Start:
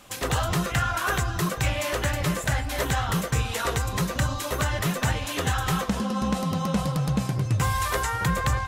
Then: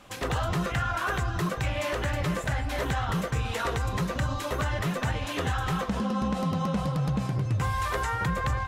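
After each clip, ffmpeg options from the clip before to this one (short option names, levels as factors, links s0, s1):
-af "highshelf=f=5200:g=-11.5,alimiter=limit=0.1:level=0:latency=1:release=63"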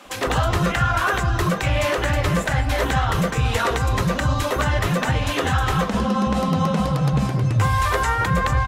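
-filter_complex "[0:a]equalizer=f=260:t=o:w=0.77:g=2,acrossover=split=230[s0][s1];[s0]adelay=50[s2];[s2][s1]amix=inputs=2:normalize=0,volume=2.66"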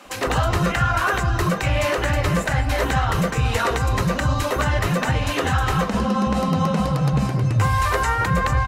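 -af "bandreject=f=3400:w=14"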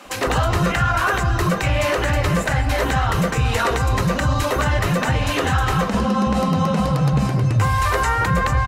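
-filter_complex "[0:a]asplit=2[s0][s1];[s1]alimiter=limit=0.168:level=0:latency=1,volume=1[s2];[s0][s2]amix=inputs=2:normalize=0,aecho=1:1:131:0.0944,volume=0.708"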